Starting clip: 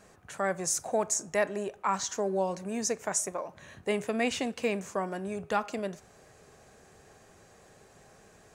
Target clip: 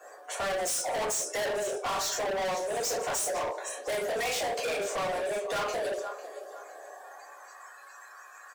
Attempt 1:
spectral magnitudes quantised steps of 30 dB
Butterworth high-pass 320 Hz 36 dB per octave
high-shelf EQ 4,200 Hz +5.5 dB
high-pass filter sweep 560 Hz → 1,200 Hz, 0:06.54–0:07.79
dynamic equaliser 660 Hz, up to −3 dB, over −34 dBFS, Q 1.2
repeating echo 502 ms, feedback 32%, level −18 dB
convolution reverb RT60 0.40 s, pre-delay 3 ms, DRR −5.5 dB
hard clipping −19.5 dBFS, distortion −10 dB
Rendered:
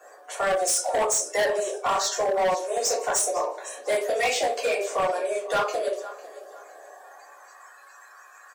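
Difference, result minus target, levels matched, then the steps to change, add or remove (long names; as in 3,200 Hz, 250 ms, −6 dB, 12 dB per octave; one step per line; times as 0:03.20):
hard clipping: distortion −6 dB
change: hard clipping −29 dBFS, distortion −4 dB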